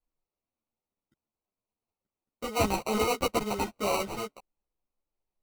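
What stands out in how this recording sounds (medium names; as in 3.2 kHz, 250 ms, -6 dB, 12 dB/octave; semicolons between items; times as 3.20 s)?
aliases and images of a low sample rate 1.7 kHz, jitter 0%; a shimmering, thickened sound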